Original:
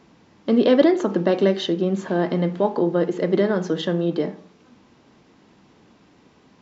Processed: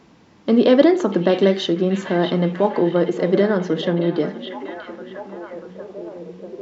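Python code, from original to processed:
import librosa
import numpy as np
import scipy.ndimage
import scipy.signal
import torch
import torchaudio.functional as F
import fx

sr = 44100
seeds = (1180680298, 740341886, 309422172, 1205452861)

y = fx.air_absorb(x, sr, metres=88.0, at=(3.57, 4.18))
y = fx.echo_stepped(y, sr, ms=640, hz=2800.0, octaves=-0.7, feedback_pct=70, wet_db=-5)
y = F.gain(torch.from_numpy(y), 2.5).numpy()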